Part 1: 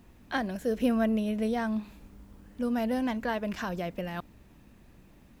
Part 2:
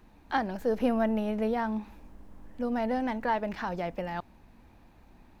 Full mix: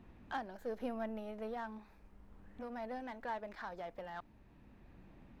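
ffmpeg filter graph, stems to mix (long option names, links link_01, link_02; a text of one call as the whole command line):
ffmpeg -i stem1.wav -i stem2.wav -filter_complex "[0:a]lowpass=2600,asoftclip=type=tanh:threshold=-33dB,volume=-2.5dB[link_01];[1:a]volume=-1,volume=-13dB,asplit=2[link_02][link_03];[link_03]apad=whole_len=238166[link_04];[link_01][link_04]sidechaincompress=threshold=-48dB:ratio=8:attack=7.8:release=1350[link_05];[link_05][link_02]amix=inputs=2:normalize=0" out.wav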